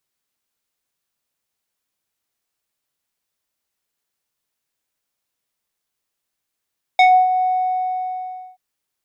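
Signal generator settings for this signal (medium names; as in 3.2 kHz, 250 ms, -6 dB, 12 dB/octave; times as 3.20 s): synth note square F#5 12 dB/octave, low-pass 900 Hz, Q 1.7, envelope 2 oct, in 0.15 s, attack 3.2 ms, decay 0.28 s, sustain -11 dB, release 1.14 s, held 0.44 s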